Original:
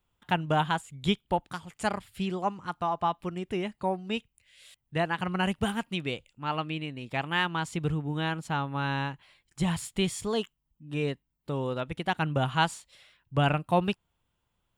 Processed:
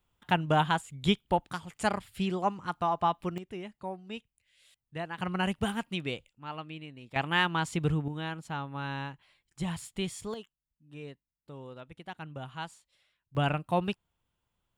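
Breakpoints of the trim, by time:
+0.5 dB
from 3.38 s -9 dB
from 5.18 s -2 dB
from 6.29 s -9 dB
from 7.16 s +1 dB
from 8.08 s -6 dB
from 10.34 s -14 dB
from 13.35 s -3.5 dB

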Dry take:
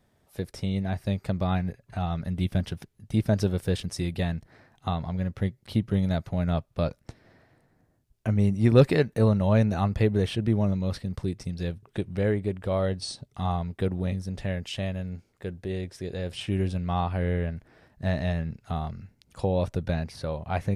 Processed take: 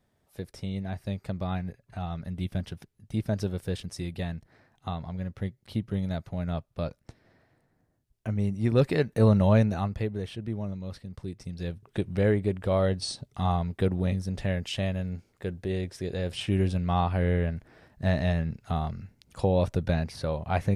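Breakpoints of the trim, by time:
8.82 s -5 dB
9.40 s +3 dB
10.14 s -9 dB
11.12 s -9 dB
12.06 s +1.5 dB

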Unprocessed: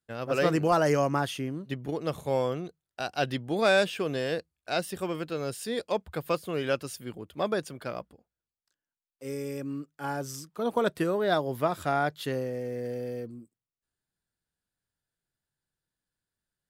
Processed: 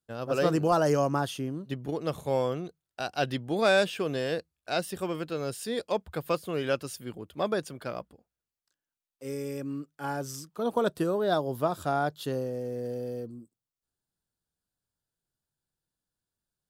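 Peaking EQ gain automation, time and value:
peaking EQ 2.1 kHz 0.64 oct
1.41 s -9 dB
2.01 s -2 dB
10.39 s -2 dB
11.05 s -12 dB

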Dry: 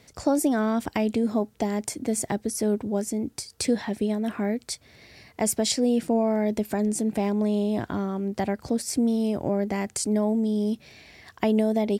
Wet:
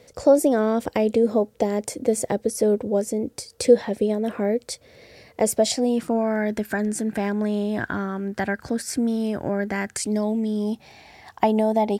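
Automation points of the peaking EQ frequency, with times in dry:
peaking EQ +15 dB 0.49 oct
5.52 s 510 Hz
6.23 s 1.6 kHz
9.96 s 1.6 kHz
10.16 s 5.9 kHz
10.70 s 830 Hz

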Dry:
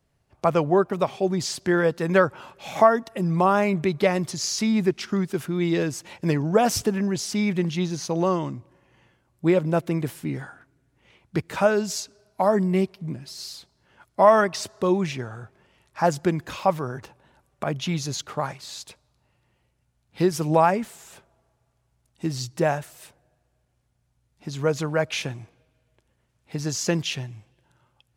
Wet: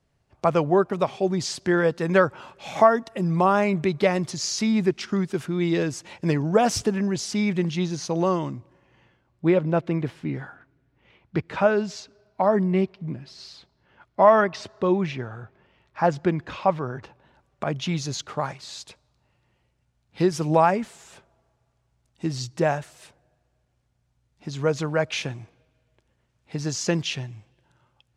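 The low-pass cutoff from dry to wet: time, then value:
8.43 s 8.5 kHz
9.56 s 3.6 kHz
16.81 s 3.6 kHz
17.89 s 7.7 kHz

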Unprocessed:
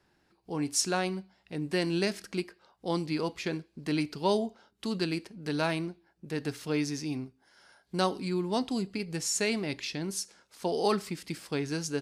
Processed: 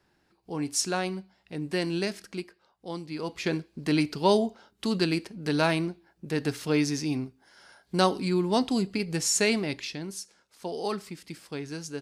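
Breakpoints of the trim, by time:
1.84 s +0.5 dB
3.07 s -6.5 dB
3.49 s +5 dB
9.50 s +5 dB
10.19 s -4 dB

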